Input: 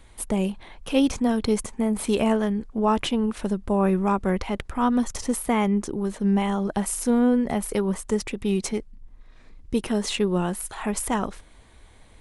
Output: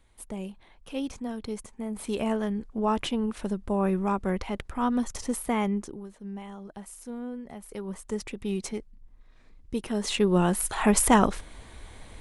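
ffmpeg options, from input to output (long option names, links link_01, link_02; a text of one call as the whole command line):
ffmpeg -i in.wav -af "volume=18.5dB,afade=type=in:start_time=1.75:duration=0.8:silence=0.421697,afade=type=out:start_time=5.66:duration=0.42:silence=0.237137,afade=type=in:start_time=7.61:duration=0.65:silence=0.298538,afade=type=in:start_time=9.88:duration=1.03:silence=0.237137" out.wav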